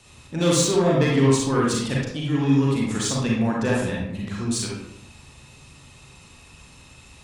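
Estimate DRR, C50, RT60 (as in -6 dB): -4.0 dB, -0.5 dB, 0.80 s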